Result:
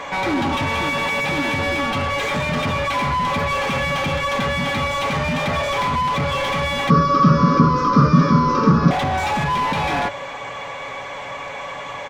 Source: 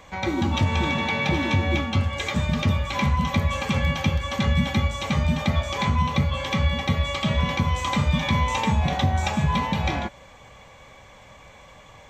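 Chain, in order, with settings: notches 50/100/150 Hz; comb 7.1 ms, depth 45%; limiter -16.5 dBFS, peak gain reduction 6.5 dB; overdrive pedal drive 25 dB, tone 1700 Hz, clips at -16.5 dBFS; 6.9–8.91 EQ curve 100 Hz 0 dB, 160 Hz +15 dB, 310 Hz +13 dB, 510 Hz +7 dB, 790 Hz -18 dB, 1200 Hz +14 dB, 2000 Hz -12 dB, 3500 Hz -12 dB, 5300 Hz +6 dB, 8100 Hz -24 dB; gain +3 dB

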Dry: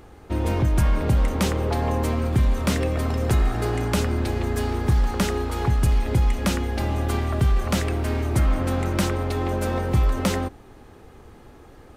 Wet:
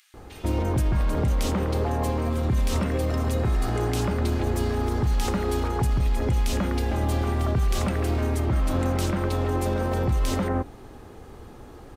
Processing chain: limiter -19.5 dBFS, peak gain reduction 8 dB; bands offset in time highs, lows 0.14 s, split 2100 Hz; gain +3 dB

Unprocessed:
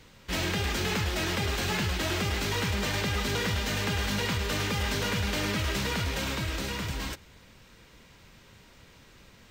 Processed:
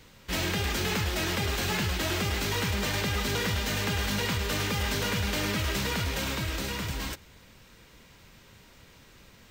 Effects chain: high shelf 11000 Hz +6.5 dB

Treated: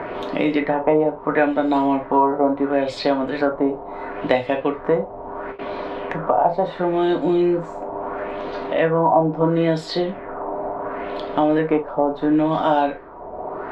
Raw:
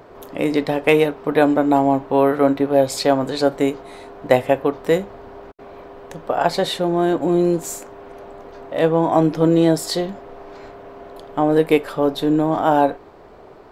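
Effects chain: non-linear reverb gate 90 ms falling, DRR 2.5 dB; LFO low-pass sine 0.73 Hz 790–4100 Hz; three-band squash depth 70%; gain -4.5 dB

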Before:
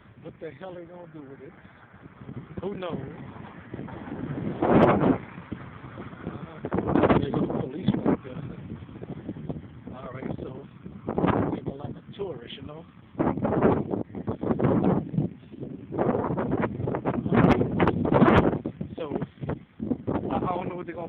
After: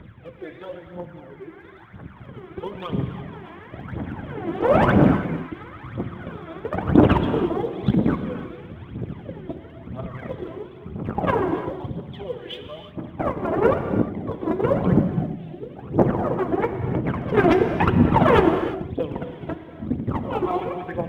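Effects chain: pre-echo 0.224 s -19 dB; phaser 1 Hz, delay 3.1 ms, feedback 77%; non-linear reverb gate 0.37 s flat, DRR 7 dB

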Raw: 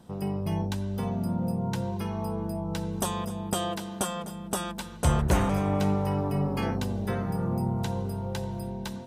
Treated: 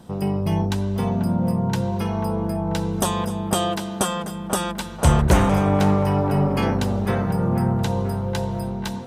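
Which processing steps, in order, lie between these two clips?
band-limited delay 0.489 s, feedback 49%, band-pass 1000 Hz, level -8.5 dB; Doppler distortion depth 0.11 ms; gain +7.5 dB

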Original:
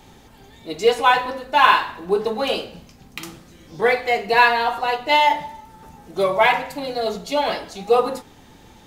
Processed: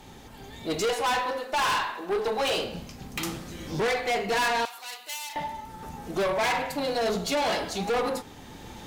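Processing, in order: recorder AGC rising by 7.1 dB/s; 0.89–2.58 HPF 360 Hz 12 dB/oct; tube stage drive 23 dB, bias 0.25; 4.65–5.36 differentiator

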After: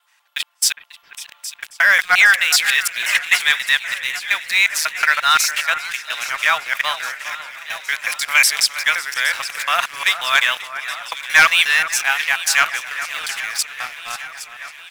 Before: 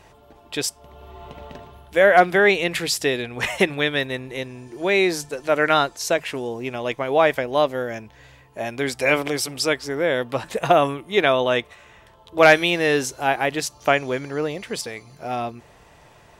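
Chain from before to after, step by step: local time reversal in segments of 0.197 s; HPF 1300 Hz 24 dB/oct; high shelf 3600 Hz -3.5 dB; tempo 1.1×; sample leveller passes 2; high shelf 7900 Hz +6.5 dB; echo with dull and thin repeats by turns 0.408 s, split 2200 Hz, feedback 79%, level -11.5 dB; warbling echo 0.543 s, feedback 39%, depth 174 cents, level -18 dB; gain +2.5 dB

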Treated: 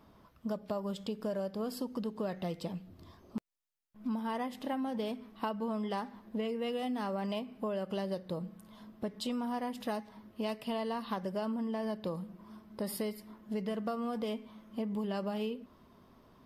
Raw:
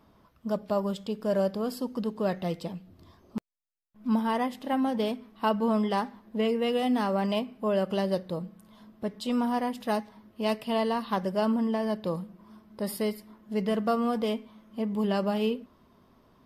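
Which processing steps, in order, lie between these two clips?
compressor 6:1, threshold -33 dBFS, peak gain reduction 12 dB

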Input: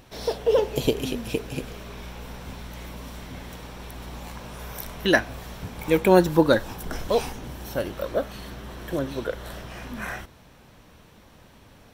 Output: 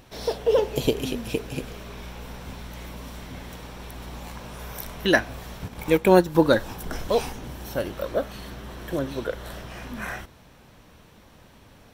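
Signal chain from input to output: 5.58–6.35 transient shaper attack +1 dB, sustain -7 dB

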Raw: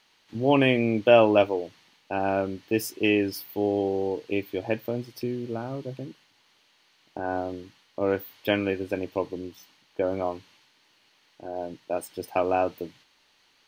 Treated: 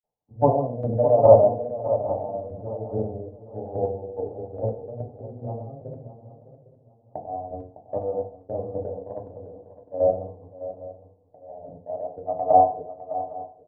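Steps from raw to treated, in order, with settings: steep low-pass 970 Hz 72 dB/oct; comb 1.6 ms, depth 83%; dynamic EQ 440 Hz, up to -5 dB, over -33 dBFS, Q 1; grains, pitch spread up and down by 0 st; chopper 2.4 Hz, depth 60%, duty 25%; swung echo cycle 0.809 s, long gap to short 3:1, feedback 37%, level -10 dB; FDN reverb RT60 0.49 s, low-frequency decay 0.95×, high-frequency decay 0.3×, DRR 1.5 dB; three-band expander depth 40%; gain +2.5 dB

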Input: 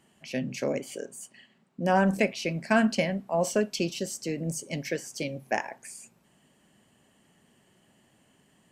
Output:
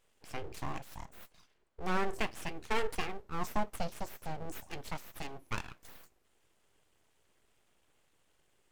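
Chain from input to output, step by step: 3.21–4.46 fifteen-band EQ 400 Hz +6 dB, 1000 Hz -10 dB, 2500 Hz -6 dB, 10000 Hz -6 dB; full-wave rectifier; gain -7 dB

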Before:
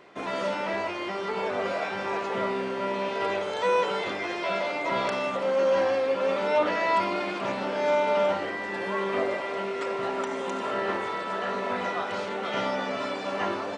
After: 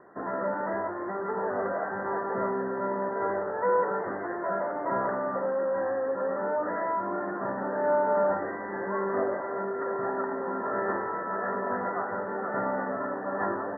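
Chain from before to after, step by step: Chebyshev low-pass 1900 Hz, order 10; 5.44–7.72 compressor 4:1, threshold -26 dBFS, peak gain reduction 6 dB

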